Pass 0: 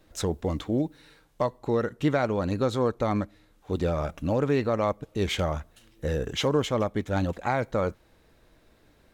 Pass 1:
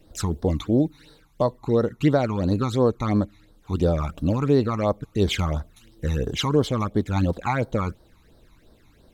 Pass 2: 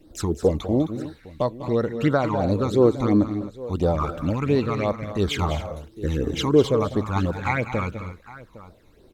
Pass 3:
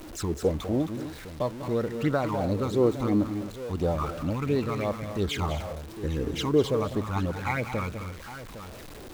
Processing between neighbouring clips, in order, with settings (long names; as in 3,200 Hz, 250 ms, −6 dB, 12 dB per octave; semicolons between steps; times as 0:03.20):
all-pass phaser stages 12, 2.9 Hz, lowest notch 500–2,500 Hz; level +5.5 dB
on a send: multi-tap delay 198/207/263/809 ms −13.5/−14/−14.5/−19 dB; on the sum: auto-filter bell 0.32 Hz 300–2,500 Hz +10 dB; level −2 dB
converter with a step at zero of −32 dBFS; level −6 dB